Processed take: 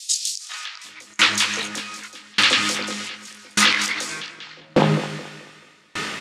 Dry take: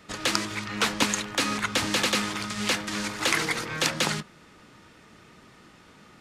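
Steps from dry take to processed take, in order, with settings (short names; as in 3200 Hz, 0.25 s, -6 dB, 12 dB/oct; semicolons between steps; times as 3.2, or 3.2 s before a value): HPF 140 Hz 12 dB/oct; tilt shelf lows -8 dB, about 1500 Hz; added harmonics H 3 -25 dB, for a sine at 3.5 dBFS; three bands offset in time highs, mids, lows 0.4/0.75 s, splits 810/5000 Hz; compressor 10:1, threshold -40 dBFS, peak gain reduction 20.5 dB; air absorption 56 m; doubler 20 ms -4 dB; on a send: tape echo 0.215 s, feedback 68%, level -7 dB, low-pass 3100 Hz; on the sum: maximiser +29.5 dB; dB-ramp tremolo decaying 0.84 Hz, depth 33 dB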